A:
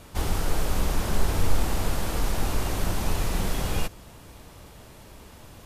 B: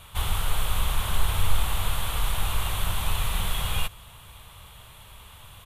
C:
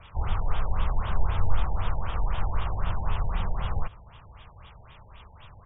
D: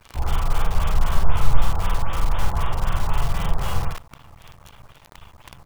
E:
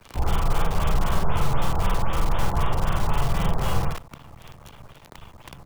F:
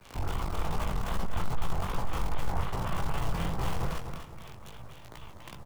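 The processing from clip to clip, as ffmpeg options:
ffmpeg -i in.wav -af "firequalizer=gain_entry='entry(110,0);entry(270,-17);entry(420,-10);entry(1100,4);entry(1700,-1);entry(3400,9);entry(5000,-9);entry(9300,4)':delay=0.05:min_phase=1" out.wav
ffmpeg -i in.wav -filter_complex "[0:a]acrossover=split=360|1700[link_01][link_02][link_03];[link_03]alimiter=level_in=9dB:limit=-24dB:level=0:latency=1:release=439,volume=-9dB[link_04];[link_01][link_02][link_04]amix=inputs=3:normalize=0,afftfilt=real='re*lt(b*sr/1024,920*pow(3800/920,0.5+0.5*sin(2*PI*3.9*pts/sr)))':imag='im*lt(b*sr/1024,920*pow(3800/920,0.5+0.5*sin(2*PI*3.9*pts/sr)))':win_size=1024:overlap=0.75" out.wav
ffmpeg -i in.wav -filter_complex "[0:a]asplit=2[link_01][link_02];[link_02]adelay=49,volume=-3dB[link_03];[link_01][link_03]amix=inputs=2:normalize=0,asplit=2[link_04][link_05];[link_05]aecho=0:1:15|42|55:0.266|0.501|0.668[link_06];[link_04][link_06]amix=inputs=2:normalize=0,acrusher=bits=7:dc=4:mix=0:aa=0.000001,volume=2dB" out.wav
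ffmpeg -i in.wav -filter_complex "[0:a]acrossover=split=130|600[link_01][link_02][link_03];[link_01]alimiter=limit=-14dB:level=0:latency=1:release=159[link_04];[link_02]acontrast=38[link_05];[link_04][link_05][link_03]amix=inputs=3:normalize=0" out.wav
ffmpeg -i in.wav -af "asoftclip=type=tanh:threshold=-22dB,flanger=delay=16:depth=7.8:speed=2.5,aecho=1:1:249|498|747:0.398|0.111|0.0312" out.wav

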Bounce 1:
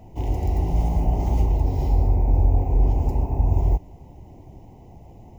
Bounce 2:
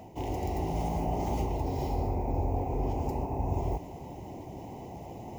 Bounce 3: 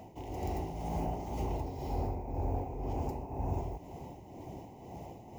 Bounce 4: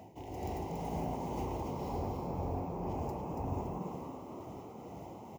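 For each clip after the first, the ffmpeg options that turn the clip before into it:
ffmpeg -i in.wav -af "highpass=frequency=280:poles=1,areverse,acompressor=mode=upward:threshold=-32dB:ratio=2.5,areverse" out.wav
ffmpeg -i in.wav -filter_complex "[0:a]tremolo=f=2:d=0.57,asplit=2[link_01][link_02];[link_02]asoftclip=type=tanh:threshold=-29.5dB,volume=-7.5dB[link_03];[link_01][link_03]amix=inputs=2:normalize=0,volume=-5dB" out.wav
ffmpeg -i in.wav -filter_complex "[0:a]highpass=70,asplit=7[link_01][link_02][link_03][link_04][link_05][link_06][link_07];[link_02]adelay=282,afreqshift=89,volume=-4dB[link_08];[link_03]adelay=564,afreqshift=178,volume=-10dB[link_09];[link_04]adelay=846,afreqshift=267,volume=-16dB[link_10];[link_05]adelay=1128,afreqshift=356,volume=-22.1dB[link_11];[link_06]adelay=1410,afreqshift=445,volume=-28.1dB[link_12];[link_07]adelay=1692,afreqshift=534,volume=-34.1dB[link_13];[link_01][link_08][link_09][link_10][link_11][link_12][link_13]amix=inputs=7:normalize=0,volume=-2dB" out.wav

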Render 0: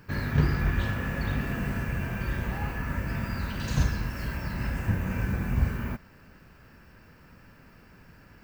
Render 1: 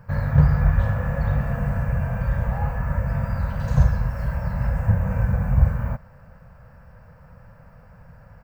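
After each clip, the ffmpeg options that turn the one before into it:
ffmpeg -i in.wav -af "firequalizer=gain_entry='entry(150,0);entry(350,-28);entry(500,1);entry(2800,-19);entry(7700,-15)':delay=0.05:min_phase=1,volume=8.5dB" out.wav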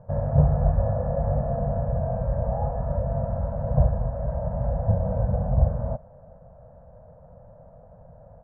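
ffmpeg -i in.wav -af "lowpass=frequency=650:width_type=q:width=4.5,volume=-3.5dB" out.wav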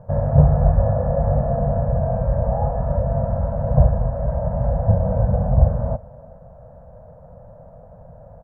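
ffmpeg -i in.wav -filter_complex "[0:a]asplit=2[link_01][link_02];[link_02]adelay=320.7,volume=-23dB,highshelf=frequency=4000:gain=-7.22[link_03];[link_01][link_03]amix=inputs=2:normalize=0,volume=5.5dB" out.wav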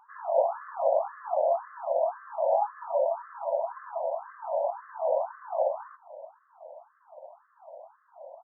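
ffmpeg -i in.wav -af "afftfilt=real='re*between(b*sr/1024,680*pow(1500/680,0.5+0.5*sin(2*PI*1.9*pts/sr))/1.41,680*pow(1500/680,0.5+0.5*sin(2*PI*1.9*pts/sr))*1.41)':imag='im*between(b*sr/1024,680*pow(1500/680,0.5+0.5*sin(2*PI*1.9*pts/sr))/1.41,680*pow(1500/680,0.5+0.5*sin(2*PI*1.9*pts/sr))*1.41)':win_size=1024:overlap=0.75,volume=2dB" out.wav

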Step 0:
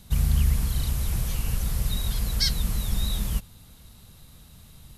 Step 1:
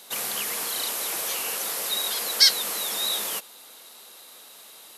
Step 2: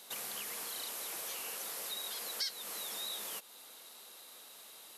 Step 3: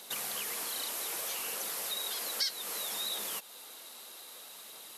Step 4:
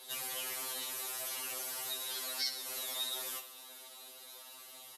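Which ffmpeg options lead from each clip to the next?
ffmpeg -i in.wav -af "highpass=frequency=400:width=0.5412,highpass=frequency=400:width=1.3066,volume=9dB" out.wav
ffmpeg -i in.wav -af "acompressor=threshold=-35dB:ratio=2.5,volume=-6.5dB" out.wav
ffmpeg -i in.wav -af "aphaser=in_gain=1:out_gain=1:delay=3.8:decay=0.21:speed=0.63:type=triangular,volume=4.5dB" out.wav
ffmpeg -i in.wav -af "aecho=1:1:66|132|198|264|330|396:0.266|0.149|0.0834|0.0467|0.0262|0.0147,afftfilt=real='re*2.45*eq(mod(b,6),0)':imag='im*2.45*eq(mod(b,6),0)':win_size=2048:overlap=0.75,volume=-1dB" out.wav

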